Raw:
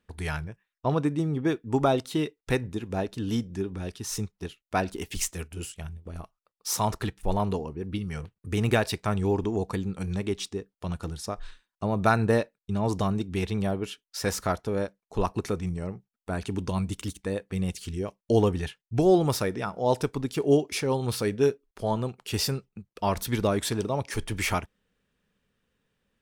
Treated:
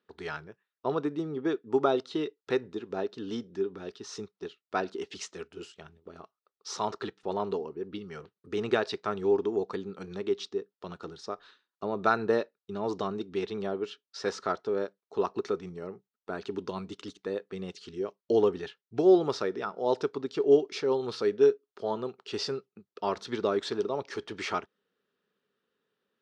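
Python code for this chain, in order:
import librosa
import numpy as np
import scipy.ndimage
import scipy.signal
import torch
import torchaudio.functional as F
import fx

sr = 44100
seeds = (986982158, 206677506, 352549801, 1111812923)

y = fx.cabinet(x, sr, low_hz=240.0, low_slope=12, high_hz=5600.0, hz=(400.0, 1300.0, 2300.0, 4000.0), db=(9, 6, -4, 3))
y = y * librosa.db_to_amplitude(-5.0)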